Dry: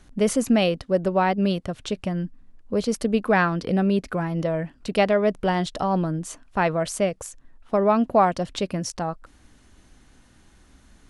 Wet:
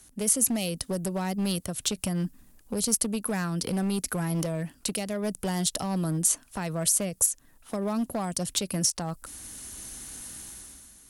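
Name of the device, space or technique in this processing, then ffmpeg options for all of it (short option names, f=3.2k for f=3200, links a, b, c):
FM broadcast chain: -filter_complex "[0:a]highpass=f=47:p=1,dynaudnorm=f=100:g=11:m=13dB,acrossover=split=240|5400[a][b][c];[a]acompressor=threshold=-19dB:ratio=4[d];[b]acompressor=threshold=-24dB:ratio=4[e];[c]acompressor=threshold=-34dB:ratio=4[f];[d][e][f]amix=inputs=3:normalize=0,aemphasis=mode=production:type=50fm,alimiter=limit=-12.5dB:level=0:latency=1:release=267,asoftclip=type=hard:threshold=-16.5dB,lowpass=f=15k:w=0.5412,lowpass=f=15k:w=1.3066,aemphasis=mode=production:type=50fm,volume=-6.5dB"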